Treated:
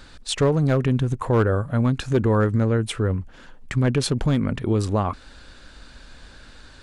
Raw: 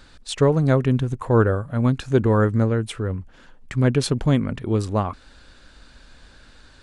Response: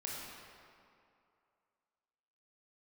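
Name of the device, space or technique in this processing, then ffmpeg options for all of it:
clipper into limiter: -af "asoftclip=type=hard:threshold=-11dB,alimiter=limit=-16dB:level=0:latency=1:release=100,volume=3.5dB"

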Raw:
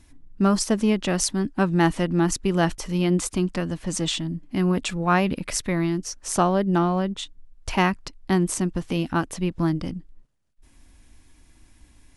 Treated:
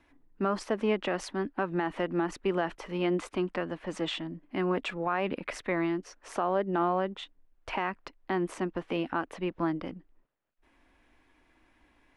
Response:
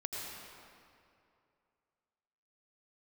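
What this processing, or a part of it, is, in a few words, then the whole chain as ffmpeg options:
DJ mixer with the lows and highs turned down: -filter_complex "[0:a]acrossover=split=310 2900:gain=0.141 1 0.0708[link_01][link_02][link_03];[link_01][link_02][link_03]amix=inputs=3:normalize=0,alimiter=limit=-18dB:level=0:latency=1:release=95"

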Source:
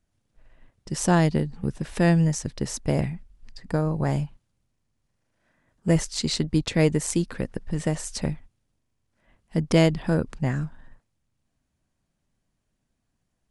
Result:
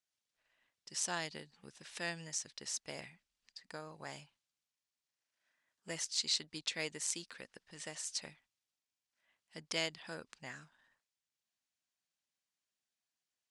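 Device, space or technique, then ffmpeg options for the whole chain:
piezo pickup straight into a mixer: -af "lowpass=5100,aderivative,volume=1.5dB"

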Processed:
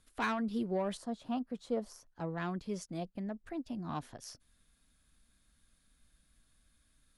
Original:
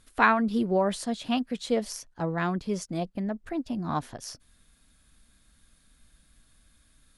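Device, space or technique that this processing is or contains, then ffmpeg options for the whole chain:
one-band saturation: -filter_complex "[0:a]acrossover=split=500|2100[link_01][link_02][link_03];[link_02]asoftclip=type=tanh:threshold=-24dB[link_04];[link_01][link_04][link_03]amix=inputs=3:normalize=0,asettb=1/sr,asplit=3[link_05][link_06][link_07];[link_05]atrim=end=0.974[link_08];[link_06]atrim=start=0.97:end=2.06,asetpts=PTS-STARTPTS,afade=type=in:duration=0.004:curve=qsin,afade=type=out:start_time=1.086:duration=0.004:curve=qsin,highshelf=frequency=1600:width_type=q:width=1.5:gain=-8[link_09];[link_07]atrim=start=2.056[link_10];[link_08][link_09]acrossfade=duration=0.004:curve1=hsin:curve2=qsin[link_11];[link_11][link_10]acrossfade=duration=0.004:curve1=qsin:curve2=hsin,volume=-8.5dB"

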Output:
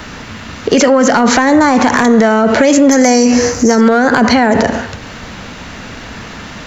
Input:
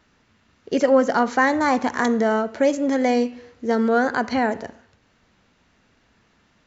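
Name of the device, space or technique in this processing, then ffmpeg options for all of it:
mastering chain: -filter_complex "[0:a]asettb=1/sr,asplit=3[link_01][link_02][link_03];[link_01]atrim=end=2.914[link_04];[link_02]atrim=start=2.91:end=3.81,asetpts=PTS-STARTPTS,afade=type=in:duration=0.004:curve=qsin,afade=type=out:start_time=0.896:duration=0.004:curve=qsin,highshelf=frequency=4600:width_type=q:width=3:gain=9[link_05];[link_03]atrim=start=3.806[link_06];[link_04][link_05]acrossfade=duration=0.004:curve1=hsin:curve2=qsin[link_07];[link_07][link_06]acrossfade=duration=0.004:curve1=qsin:curve2=hsin,equalizer=frequency=370:width_type=o:width=0.28:gain=-3.5,acrossover=split=370|860|6600[link_08][link_09][link_10][link_11];[link_08]acompressor=threshold=-27dB:ratio=4[link_12];[link_09]acompressor=threshold=-30dB:ratio=4[link_13];[link_10]acompressor=threshold=-28dB:ratio=4[link_14];[link_11]acompressor=threshold=-42dB:ratio=4[link_15];[link_12][link_13][link_14][link_15]amix=inputs=4:normalize=0,acompressor=threshold=-28dB:ratio=2.5,asoftclip=type=tanh:threshold=-17.5dB,asoftclip=type=hard:threshold=-22dB,alimiter=level_in=34dB:limit=-1dB:release=50:level=0:latency=1,volume=-1dB"

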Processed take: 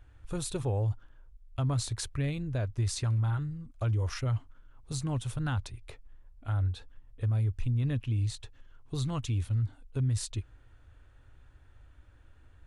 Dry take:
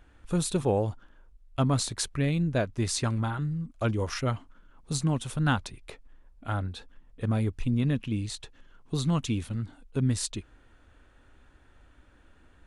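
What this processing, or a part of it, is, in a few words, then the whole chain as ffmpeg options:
car stereo with a boomy subwoofer: -af "lowshelf=frequency=140:width_type=q:width=3:gain=6.5,alimiter=limit=-18dB:level=0:latency=1:release=24,volume=-5dB"

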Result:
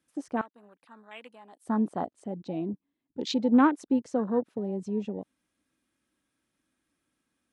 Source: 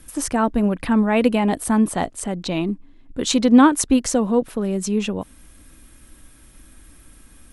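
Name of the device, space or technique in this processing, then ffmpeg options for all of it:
over-cleaned archive recording: -filter_complex "[0:a]highpass=170,lowpass=6700,afwtdn=0.0501,asettb=1/sr,asplit=3[link_01][link_02][link_03];[link_01]atrim=end=0.414[link_04];[link_02]atrim=start=0.41:end=1.66,asetpts=PTS-STARTPTS,afade=type=in:duration=0.004:curve=qsin,afade=type=out:start_time=1.246:duration=0.004:curve=qsin,aderivative[link_05];[link_03]atrim=start=1.656[link_06];[link_04][link_05]acrossfade=duration=0.004:curve1=hsin:curve2=qsin[link_07];[link_07][link_06]acrossfade=duration=0.004:curve1=qsin:curve2=hsin,volume=-8dB"

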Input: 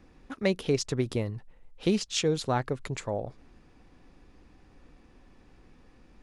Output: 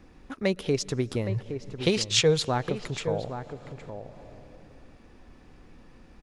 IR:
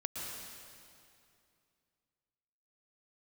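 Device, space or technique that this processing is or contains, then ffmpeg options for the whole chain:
ducked reverb: -filter_complex "[0:a]asettb=1/sr,asplit=3[link_01][link_02][link_03];[link_01]atrim=end=1.294[link_04];[link_02]atrim=start=1.29:end=2.45,asetpts=PTS-STARTPTS,afade=type=in:duration=0.004:curve=qsin,afade=type=out:start_time=1.156:duration=0.004:curve=qsin,equalizer=frequency=125:width_type=o:width=1:gain=12,equalizer=frequency=250:width_type=o:width=1:gain=-11,equalizer=frequency=500:width_type=o:width=1:gain=7,equalizer=frequency=1000:width_type=o:width=1:gain=5,equalizer=frequency=2000:width_type=o:width=1:gain=6,equalizer=frequency=4000:width_type=o:width=1:gain=6,equalizer=frequency=8000:width_type=o:width=1:gain=4[link_05];[link_03]atrim=start=2.446[link_06];[link_04][link_05]acrossfade=duration=0.004:curve1=hsin:curve2=qsin[link_07];[link_07][link_06]acrossfade=duration=0.004:curve1=qsin:curve2=hsin,asplit=2[link_08][link_09];[link_09]adelay=816.3,volume=-9dB,highshelf=frequency=4000:gain=-18.4[link_10];[link_08][link_10]amix=inputs=2:normalize=0,asplit=3[link_11][link_12][link_13];[1:a]atrim=start_sample=2205[link_14];[link_12][link_14]afir=irnorm=-1:irlink=0[link_15];[link_13]apad=whole_len=310357[link_16];[link_15][link_16]sidechaincompress=threshold=-45dB:ratio=8:attack=7:release=217,volume=-4dB[link_17];[link_11][link_17]amix=inputs=2:normalize=0"

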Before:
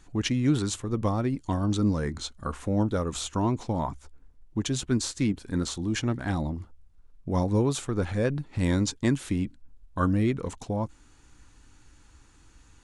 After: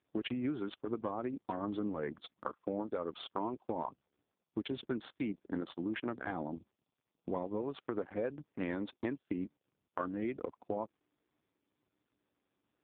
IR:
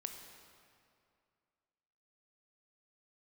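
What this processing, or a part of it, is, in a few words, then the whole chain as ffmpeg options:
voicemail: -af "anlmdn=10,highpass=340,lowpass=3200,acompressor=threshold=-35dB:ratio=8,volume=3dB" -ar 8000 -c:a libopencore_amrnb -b:a 5150

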